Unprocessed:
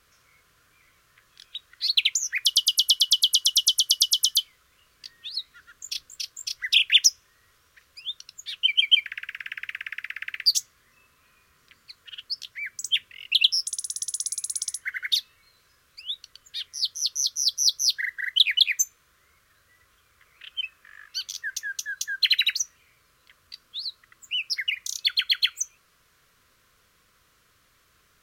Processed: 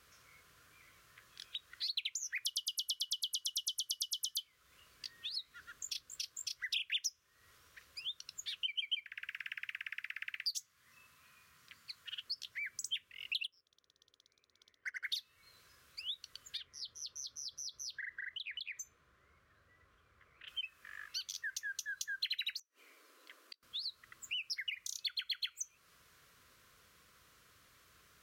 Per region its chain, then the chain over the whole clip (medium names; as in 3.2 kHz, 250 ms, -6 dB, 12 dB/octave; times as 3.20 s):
9.30–12.26 s: high-pass 91 Hz + peaking EQ 390 Hz -7.5 dB 1.5 oct
13.44–15.04 s: low-pass 2.8 kHz 24 dB/octave + peaking EQ 430 Hz +10 dB 1.6 oct + power-law waveshaper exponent 1.4
16.57–20.48 s: low-pass 1.1 kHz 6 dB/octave + compression, threshold -36 dBFS
22.59–23.63 s: steep high-pass 270 Hz 72 dB/octave + bass shelf 480 Hz +12 dB + inverted gate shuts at -31 dBFS, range -30 dB
whole clip: high-pass 47 Hz; compression 3:1, threshold -39 dBFS; trim -2 dB